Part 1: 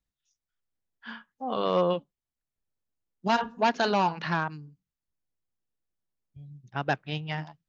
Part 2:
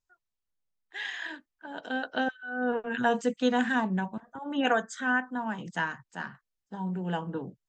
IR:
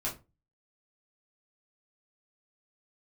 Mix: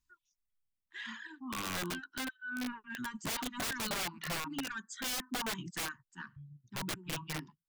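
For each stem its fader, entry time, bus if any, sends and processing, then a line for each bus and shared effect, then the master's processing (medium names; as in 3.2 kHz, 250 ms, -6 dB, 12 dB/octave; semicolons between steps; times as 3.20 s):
-3.0 dB, 0.00 s, no send, treble shelf 3.2 kHz -2.5 dB; band-stop 1.6 kHz, Q 7.8
+2.5 dB, 0.00 s, no send, saturation -22 dBFS, distortion -13 dB; auto duck -9 dB, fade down 0.75 s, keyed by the first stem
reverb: none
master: reverb removal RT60 1.4 s; elliptic band-stop 350–970 Hz, stop band 40 dB; integer overflow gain 31 dB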